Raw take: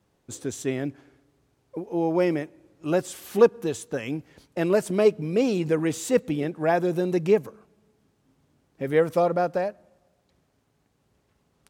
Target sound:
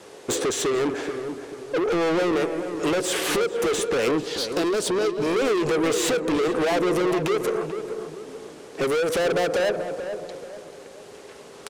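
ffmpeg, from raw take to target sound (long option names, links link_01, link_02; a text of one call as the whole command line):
ffmpeg -i in.wav -filter_complex "[0:a]lowpass=frequency=11000:width=0.5412,lowpass=frequency=11000:width=1.3066,equalizer=frequency=430:width_type=o:width=0.83:gain=13.5,acrossover=split=1200|3200[link_01][link_02][link_03];[link_01]acompressor=threshold=-15dB:ratio=4[link_04];[link_02]acompressor=threshold=-43dB:ratio=4[link_05];[link_03]acompressor=threshold=-54dB:ratio=4[link_06];[link_04][link_05][link_06]amix=inputs=3:normalize=0,alimiter=limit=-19dB:level=0:latency=1:release=171,acompressor=threshold=-24dB:ratio=6,asettb=1/sr,asplit=3[link_07][link_08][link_09];[link_07]atrim=end=4.184[link_10];[link_08]atrim=start=4.18:end=5.26,asetpts=PTS-STARTPTS,afade=type=in:duration=0.004:curve=qsin,afade=type=out:start_time=1.076:duration=0.004:curve=qsin,equalizer=frequency=500:width_type=o:width=1:gain=-6,equalizer=frequency=2000:width_type=o:width=1:gain=-11,equalizer=frequency=4000:width_type=o:width=1:gain=11[link_11];[link_09]atrim=start=5.256[link_12];[link_10][link_11]acrossfade=duration=0.004:curve1=hsin:curve2=qsin[link_13];[link_13][link_12]acrossfade=duration=0.004:curve1=qsin:curve2=hsin,asplit=2[link_14][link_15];[link_15]highpass=frequency=720:poles=1,volume=22dB,asoftclip=type=tanh:threshold=-17dB[link_16];[link_14][link_16]amix=inputs=2:normalize=0,lowpass=frequency=1300:poles=1,volume=-6dB,crystalizer=i=8.5:c=0,asoftclip=type=tanh:threshold=-27dB,asplit=2[link_17][link_18];[link_18]adelay=437,lowpass=frequency=1300:poles=1,volume=-7.5dB,asplit=2[link_19][link_20];[link_20]adelay=437,lowpass=frequency=1300:poles=1,volume=0.42,asplit=2[link_21][link_22];[link_22]adelay=437,lowpass=frequency=1300:poles=1,volume=0.42,asplit=2[link_23][link_24];[link_24]adelay=437,lowpass=frequency=1300:poles=1,volume=0.42,asplit=2[link_25][link_26];[link_26]adelay=437,lowpass=frequency=1300:poles=1,volume=0.42[link_27];[link_17][link_19][link_21][link_23][link_25][link_27]amix=inputs=6:normalize=0,volume=6.5dB" out.wav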